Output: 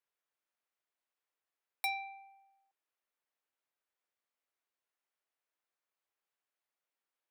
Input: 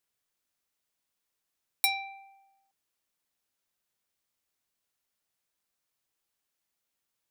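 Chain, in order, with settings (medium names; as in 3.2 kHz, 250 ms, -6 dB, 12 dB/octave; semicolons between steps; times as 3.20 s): three-band isolator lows -21 dB, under 320 Hz, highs -12 dB, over 2.8 kHz; trim -3 dB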